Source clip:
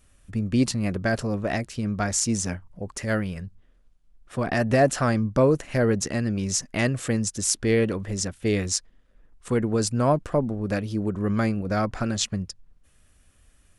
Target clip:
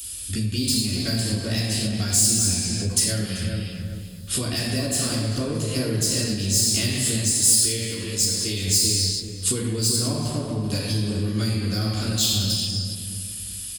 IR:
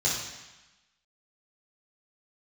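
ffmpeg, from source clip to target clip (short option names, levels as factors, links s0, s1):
-filter_complex "[1:a]atrim=start_sample=2205,afade=t=out:st=0.36:d=0.01,atrim=end_sample=16317,asetrate=31311,aresample=44100[s0];[0:a][s0]afir=irnorm=-1:irlink=0,aexciter=amount=1.5:drive=7.8:freq=3000,acompressor=threshold=0.0794:ratio=4,highshelf=f=2000:g=9.5,acrossover=split=410[s1][s2];[s2]acompressor=threshold=0.00112:ratio=1.5[s3];[s1][s3]amix=inputs=2:normalize=0,asplit=2[s4][s5];[s5]adelay=387,lowpass=f=1100:p=1,volume=0.631,asplit=2[s6][s7];[s7]adelay=387,lowpass=f=1100:p=1,volume=0.36,asplit=2[s8][s9];[s9]adelay=387,lowpass=f=1100:p=1,volume=0.36,asplit=2[s10][s11];[s11]adelay=387,lowpass=f=1100:p=1,volume=0.36,asplit=2[s12][s13];[s13]adelay=387,lowpass=f=1100:p=1,volume=0.36[s14];[s4][s6][s8][s10][s12][s14]amix=inputs=6:normalize=0,crystalizer=i=7:c=0,asettb=1/sr,asplit=3[s15][s16][s17];[s15]atrim=end=7.334[s18];[s16]atrim=start=7.33:end=8.68,asetpts=PTS-STARTPTS,afade=t=in:d=0.004:c=qsin,afade=t=out:st=1.346:d=0.004:c=qsin,lowshelf=f=350:g=-6.5[s19];[s17]atrim=start=8.676[s20];[s18][s19]acrossfade=d=0.004:c1=hsin:c2=qsin[s21];[s21][s20]acrossfade=d=0.004:c1=qsin:c2=hsin,volume=0.668"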